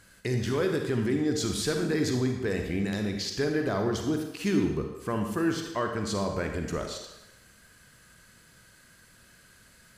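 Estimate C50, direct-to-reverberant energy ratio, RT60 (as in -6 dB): 5.0 dB, 3.5 dB, 0.95 s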